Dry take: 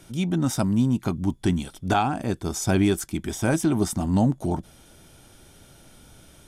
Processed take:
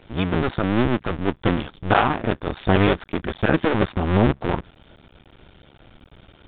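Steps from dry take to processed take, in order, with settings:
sub-harmonics by changed cycles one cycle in 2, muted
dynamic equaliser 1,500 Hz, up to +4 dB, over −42 dBFS, Q 0.9
level +5 dB
mu-law 64 kbit/s 8,000 Hz

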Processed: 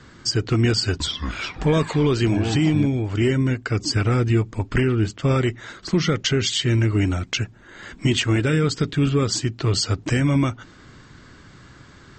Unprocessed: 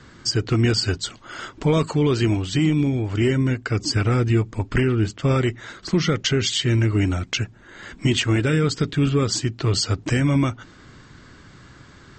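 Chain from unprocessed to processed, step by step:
0:00.72–0:02.86: delay with pitch and tempo change per echo 279 ms, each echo −6 semitones, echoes 3, each echo −6 dB

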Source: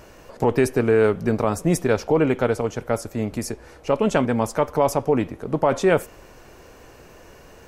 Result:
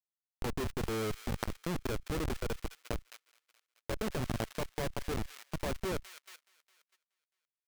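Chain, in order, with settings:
comparator with hysteresis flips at −17.5 dBFS
delay with a high-pass on its return 212 ms, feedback 48%, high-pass 1,900 Hz, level −14.5 dB
output level in coarse steps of 18 dB
level +2.5 dB

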